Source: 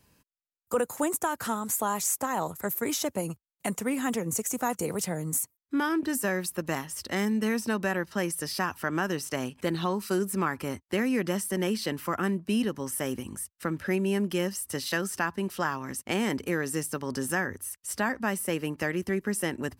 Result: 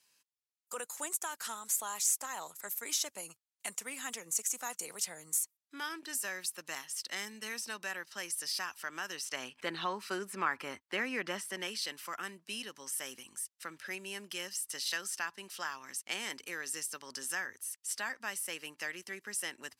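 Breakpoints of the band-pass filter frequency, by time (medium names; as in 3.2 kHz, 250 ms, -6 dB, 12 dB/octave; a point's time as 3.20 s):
band-pass filter, Q 0.64
9.06 s 5.6 kHz
9.69 s 2.2 kHz
11.41 s 2.2 kHz
11.81 s 5.3 kHz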